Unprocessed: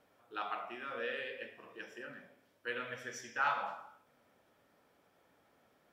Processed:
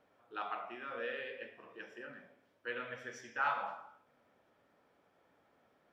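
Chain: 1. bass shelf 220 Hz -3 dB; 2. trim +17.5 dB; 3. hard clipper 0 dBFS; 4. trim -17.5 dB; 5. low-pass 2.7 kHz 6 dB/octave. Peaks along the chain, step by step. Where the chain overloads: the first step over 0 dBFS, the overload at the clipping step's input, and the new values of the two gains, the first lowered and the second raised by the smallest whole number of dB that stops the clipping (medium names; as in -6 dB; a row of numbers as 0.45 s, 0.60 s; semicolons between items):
-20.5 dBFS, -3.0 dBFS, -3.0 dBFS, -20.5 dBFS, -22.0 dBFS; nothing clips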